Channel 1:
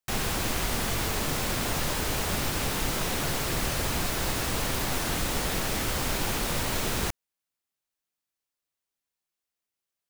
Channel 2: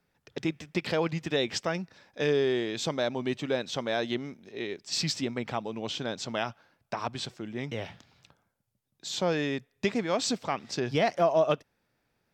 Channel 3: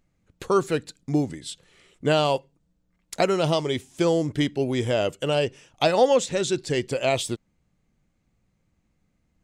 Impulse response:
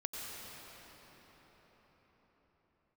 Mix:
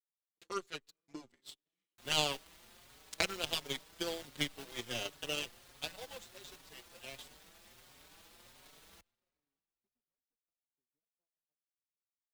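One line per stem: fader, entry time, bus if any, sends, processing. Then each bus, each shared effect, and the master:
-5.0 dB, 1.90 s, send -11.5 dB, low shelf 280 Hz -7.5 dB; bell 3600 Hz +4.5 dB 0.77 oct
-16.5 dB, 0.00 s, no send, compressor 3:1, threshold -33 dBFS, peak gain reduction 10.5 dB; band-pass 290 Hz, Q 1.2
5.33 s -3.5 dB -> 5.8 s -11 dB, 0.00 s, send -22.5 dB, weighting filter D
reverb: on, pre-delay 84 ms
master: power-law curve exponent 2; endless flanger 5.1 ms +1.4 Hz

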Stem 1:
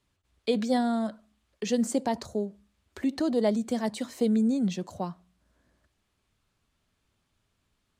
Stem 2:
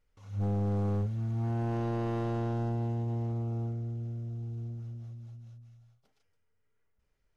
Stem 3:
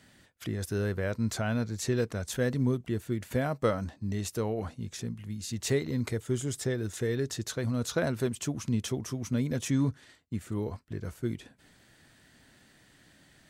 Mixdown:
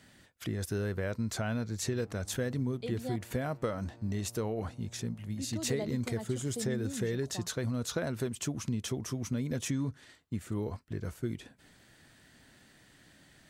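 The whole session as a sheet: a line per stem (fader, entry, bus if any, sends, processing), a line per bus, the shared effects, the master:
-13.5 dB, 2.35 s, muted 3.16–5.37, no send, dry
-13.0 dB, 1.55 s, no send, limiter -34.5 dBFS, peak gain reduction 9.5 dB; running maximum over 65 samples
0.0 dB, 0.00 s, no send, compressor, threshold -29 dBFS, peak gain reduction 8 dB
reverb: off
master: dry

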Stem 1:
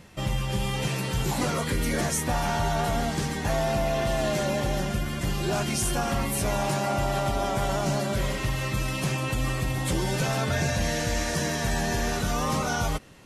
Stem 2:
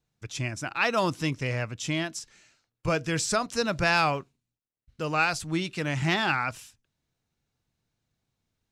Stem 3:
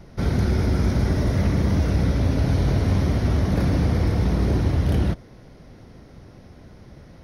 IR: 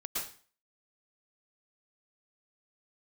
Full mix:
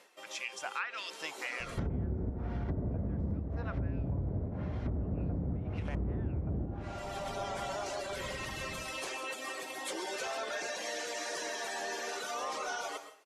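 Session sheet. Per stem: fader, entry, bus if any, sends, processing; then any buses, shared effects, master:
-13.5 dB, 0.00 s, send -11 dB, echo send -18 dB, HPF 380 Hz 24 dB/oct; reverb removal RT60 0.93 s; sine folder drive 4 dB, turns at -16.5 dBFS; auto duck -17 dB, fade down 0.25 s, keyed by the second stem
-7.0 dB, 0.00 s, no send, no echo send, LFO high-pass saw up 1.7 Hz 630–3900 Hz
-1.5 dB, 1.60 s, no send, echo send -7.5 dB, chopper 0.92 Hz, depth 65%, duty 65%; high shelf 4000 Hz -11 dB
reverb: on, RT60 0.40 s, pre-delay 0.103 s
echo: feedback echo 86 ms, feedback 54%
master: treble ducked by the level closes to 670 Hz, closed at -19.5 dBFS; compressor 5:1, threshold -33 dBFS, peak gain reduction 15.5 dB

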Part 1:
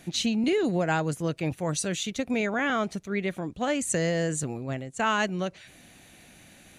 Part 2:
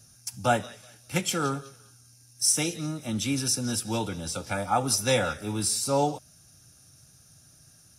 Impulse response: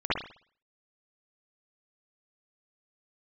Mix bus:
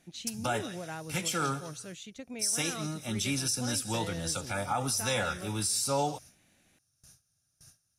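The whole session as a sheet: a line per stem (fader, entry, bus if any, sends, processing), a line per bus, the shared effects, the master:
-14.5 dB, 0.00 s, no send, dry
+1.0 dB, 0.00 s, no send, gate with hold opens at -43 dBFS; bell 290 Hz -6.5 dB 2.7 oct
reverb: off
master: limiter -20 dBFS, peak gain reduction 10 dB

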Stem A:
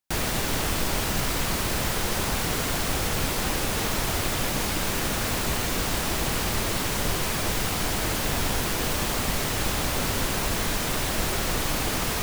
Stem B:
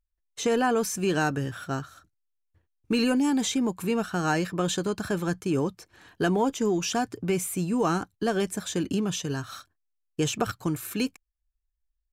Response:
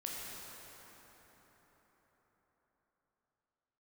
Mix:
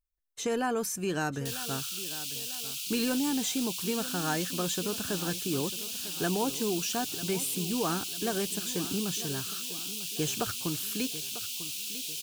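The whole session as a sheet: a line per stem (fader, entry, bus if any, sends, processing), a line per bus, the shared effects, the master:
-5.5 dB, 1.35 s, no send, no echo send, steep high-pass 2600 Hz 72 dB/oct
-6.0 dB, 0.00 s, no send, echo send -14.5 dB, high shelf 8700 Hz +9 dB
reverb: off
echo: feedback echo 0.947 s, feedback 44%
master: dry

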